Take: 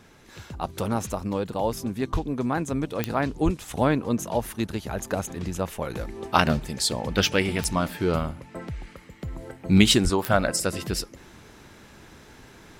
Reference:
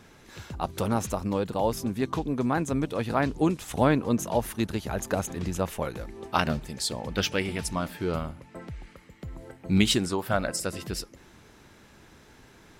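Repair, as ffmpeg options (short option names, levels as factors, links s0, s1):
-filter_complex "[0:a]adeclick=t=4,asplit=3[s0][s1][s2];[s0]afade=t=out:st=2.12:d=0.02[s3];[s1]highpass=f=140:w=0.5412,highpass=f=140:w=1.3066,afade=t=in:st=2.12:d=0.02,afade=t=out:st=2.24:d=0.02[s4];[s2]afade=t=in:st=2.24:d=0.02[s5];[s3][s4][s5]amix=inputs=3:normalize=0,asplit=3[s6][s7][s8];[s6]afade=t=out:st=3.44:d=0.02[s9];[s7]highpass=f=140:w=0.5412,highpass=f=140:w=1.3066,afade=t=in:st=3.44:d=0.02,afade=t=out:st=3.56:d=0.02[s10];[s8]afade=t=in:st=3.56:d=0.02[s11];[s9][s10][s11]amix=inputs=3:normalize=0,asplit=3[s12][s13][s14];[s12]afade=t=out:st=10.03:d=0.02[s15];[s13]highpass=f=140:w=0.5412,highpass=f=140:w=1.3066,afade=t=in:st=10.03:d=0.02,afade=t=out:st=10.15:d=0.02[s16];[s14]afade=t=in:st=10.15:d=0.02[s17];[s15][s16][s17]amix=inputs=3:normalize=0,asetnsamples=n=441:p=0,asendcmd='5.9 volume volume -5dB',volume=1"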